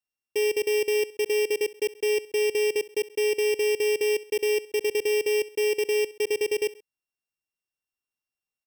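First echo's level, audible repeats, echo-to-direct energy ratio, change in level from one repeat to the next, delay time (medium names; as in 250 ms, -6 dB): -20.0 dB, 2, -19.0 dB, -6.0 dB, 66 ms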